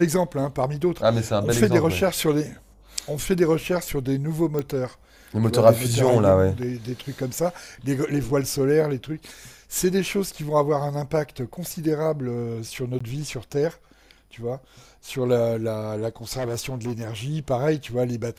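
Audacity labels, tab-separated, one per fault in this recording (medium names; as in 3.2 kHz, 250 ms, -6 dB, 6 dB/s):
4.590000	4.590000	pop -15 dBFS
12.990000	13.010000	dropout 15 ms
16.380000	17.050000	clipped -23.5 dBFS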